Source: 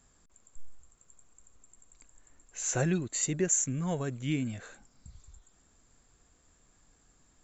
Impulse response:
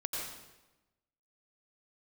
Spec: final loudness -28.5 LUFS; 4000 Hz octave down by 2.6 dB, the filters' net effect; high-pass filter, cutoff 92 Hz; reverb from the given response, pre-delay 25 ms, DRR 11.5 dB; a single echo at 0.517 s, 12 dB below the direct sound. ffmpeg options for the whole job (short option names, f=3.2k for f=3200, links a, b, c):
-filter_complex "[0:a]highpass=92,equalizer=f=4k:t=o:g=-3.5,aecho=1:1:517:0.251,asplit=2[a][b];[1:a]atrim=start_sample=2205,adelay=25[c];[b][c]afir=irnorm=-1:irlink=0,volume=-14.5dB[d];[a][d]amix=inputs=2:normalize=0,volume=3dB"